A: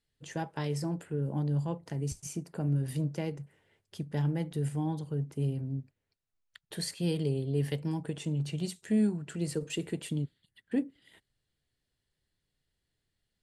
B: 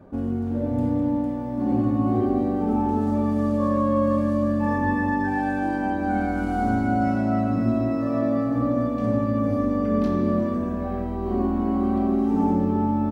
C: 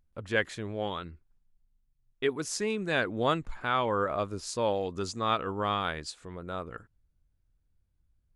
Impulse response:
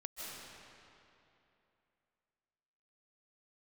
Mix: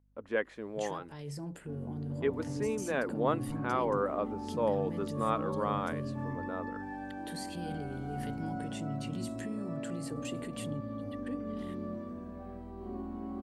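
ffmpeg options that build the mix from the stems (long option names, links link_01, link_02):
-filter_complex "[0:a]alimiter=level_in=12.5dB:limit=-24dB:level=0:latency=1:release=120,volume=-12.5dB,adelay=550,volume=2.5dB[link_01];[1:a]adelay=1550,volume=-17dB[link_02];[2:a]equalizer=frequency=125:width_type=o:width=1:gain=-9,equalizer=frequency=250:width_type=o:width=1:gain=11,equalizer=frequency=500:width_type=o:width=1:gain=9,equalizer=frequency=1000:width_type=o:width=1:gain=8,equalizer=frequency=2000:width_type=o:width=1:gain=4,equalizer=frequency=4000:width_type=o:width=1:gain=-3,equalizer=frequency=8000:width_type=o:width=1:gain=-7,aeval=exprs='val(0)+0.00178*(sin(2*PI*50*n/s)+sin(2*PI*2*50*n/s)/2+sin(2*PI*3*50*n/s)/3+sin(2*PI*4*50*n/s)/4+sin(2*PI*5*50*n/s)/5)':channel_layout=same,volume=-13dB[link_03];[link_01][link_02][link_03]amix=inputs=3:normalize=0"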